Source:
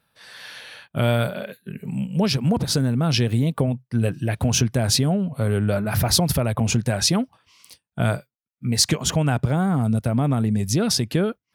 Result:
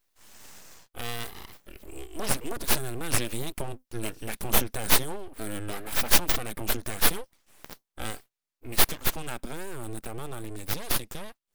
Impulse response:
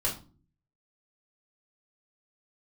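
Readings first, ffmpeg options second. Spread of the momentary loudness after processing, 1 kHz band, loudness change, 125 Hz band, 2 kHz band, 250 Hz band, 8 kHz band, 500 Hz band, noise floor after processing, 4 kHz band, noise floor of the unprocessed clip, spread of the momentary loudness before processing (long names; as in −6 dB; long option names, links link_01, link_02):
20 LU, −5.0 dB, −7.0 dB, −18.5 dB, −2.0 dB, −16.0 dB, −5.0 dB, −10.5 dB, −84 dBFS, −7.0 dB, −83 dBFS, 13 LU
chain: -af "dynaudnorm=framelen=580:gausssize=5:maxgain=11.5dB,crystalizer=i=6:c=0,aeval=exprs='abs(val(0))':channel_layout=same,volume=-16.5dB"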